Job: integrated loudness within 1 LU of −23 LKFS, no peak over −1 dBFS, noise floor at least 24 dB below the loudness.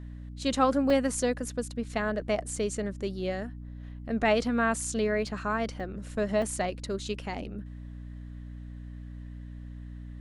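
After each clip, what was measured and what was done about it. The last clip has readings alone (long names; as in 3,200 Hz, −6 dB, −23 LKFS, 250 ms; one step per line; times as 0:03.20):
number of dropouts 5; longest dropout 2.2 ms; mains hum 60 Hz; hum harmonics up to 300 Hz; level of the hum −39 dBFS; integrated loudness −30.0 LKFS; sample peak −11.5 dBFS; target loudness −23.0 LKFS
→ repair the gap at 0:00.90/0:02.56/0:05.27/0:05.80/0:06.42, 2.2 ms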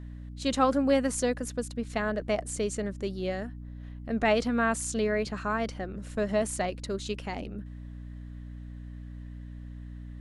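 number of dropouts 0; mains hum 60 Hz; hum harmonics up to 300 Hz; level of the hum −39 dBFS
→ mains-hum notches 60/120/180/240/300 Hz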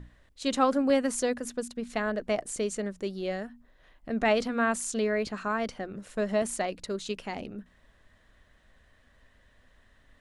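mains hum none found; integrated loudness −30.0 LKFS; sample peak −11.5 dBFS; target loudness −23.0 LKFS
→ level +7 dB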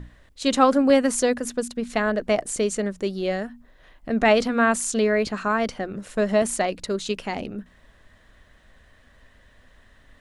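integrated loudness −23.0 LKFS; sample peak −4.5 dBFS; background noise floor −56 dBFS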